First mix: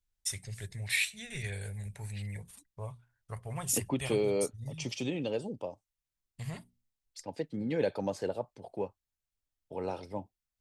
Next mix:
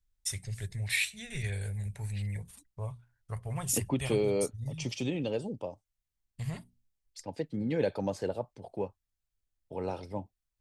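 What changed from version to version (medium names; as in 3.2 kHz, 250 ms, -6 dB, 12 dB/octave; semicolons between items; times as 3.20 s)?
master: add bass shelf 130 Hz +7.5 dB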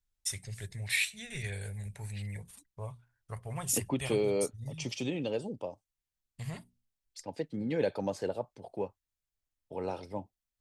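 master: add bass shelf 130 Hz -7.5 dB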